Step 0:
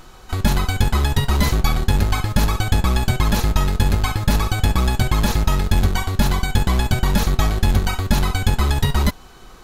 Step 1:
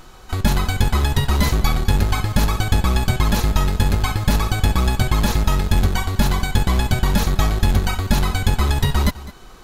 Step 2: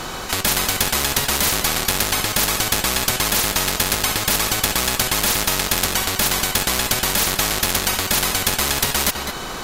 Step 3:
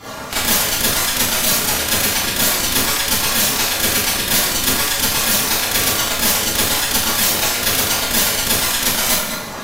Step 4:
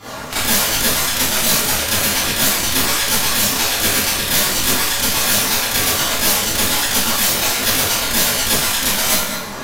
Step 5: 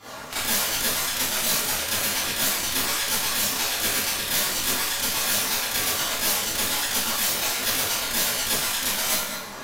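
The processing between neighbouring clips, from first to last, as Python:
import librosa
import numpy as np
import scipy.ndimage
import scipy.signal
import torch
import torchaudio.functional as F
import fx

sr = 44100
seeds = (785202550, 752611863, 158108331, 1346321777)

y1 = x + 10.0 ** (-17.5 / 20.0) * np.pad(x, (int(206 * sr / 1000.0), 0))[:len(x)]
y2 = fx.spectral_comp(y1, sr, ratio=4.0)
y2 = F.gain(torch.from_numpy(y2), 2.0).numpy()
y3 = fx.hpss_only(y2, sr, part='percussive')
y3 = fx.rev_schroeder(y3, sr, rt60_s=0.66, comb_ms=27, drr_db=-10.0)
y3 = F.gain(torch.from_numpy(y3), -4.5).numpy()
y4 = fx.detune_double(y3, sr, cents=45)
y4 = F.gain(torch.from_numpy(y4), 4.0).numpy()
y5 = fx.low_shelf(y4, sr, hz=300.0, db=-6.0)
y5 = F.gain(torch.from_numpy(y5), -7.5).numpy()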